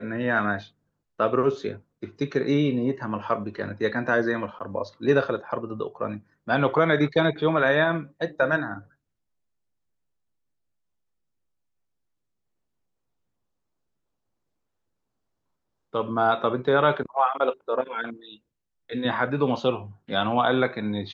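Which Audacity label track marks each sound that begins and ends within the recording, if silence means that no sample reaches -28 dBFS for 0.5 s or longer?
1.200000	8.740000	sound
15.940000	18.100000	sound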